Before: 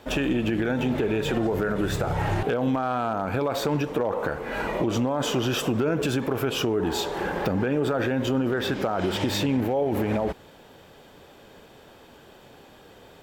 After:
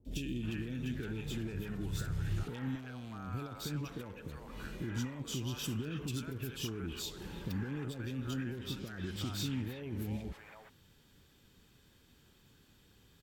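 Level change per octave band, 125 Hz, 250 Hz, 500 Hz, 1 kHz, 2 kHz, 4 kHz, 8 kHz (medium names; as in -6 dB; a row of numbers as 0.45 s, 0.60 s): -8.5 dB, -14.0 dB, -22.0 dB, -22.0 dB, -16.0 dB, -11.5 dB, -9.0 dB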